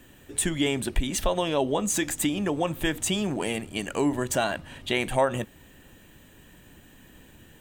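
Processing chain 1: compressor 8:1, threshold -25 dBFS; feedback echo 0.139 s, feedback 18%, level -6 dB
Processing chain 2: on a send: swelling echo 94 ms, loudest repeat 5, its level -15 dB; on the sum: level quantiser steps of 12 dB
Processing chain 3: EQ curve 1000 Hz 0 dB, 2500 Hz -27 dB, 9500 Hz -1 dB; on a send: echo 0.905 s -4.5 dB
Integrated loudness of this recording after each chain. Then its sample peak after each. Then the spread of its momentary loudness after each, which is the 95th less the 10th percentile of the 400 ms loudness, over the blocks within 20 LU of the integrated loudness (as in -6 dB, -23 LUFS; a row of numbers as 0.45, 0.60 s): -29.5, -31.0, -27.5 LUFS; -13.0, -12.0, -11.0 dBFS; 4, 20, 10 LU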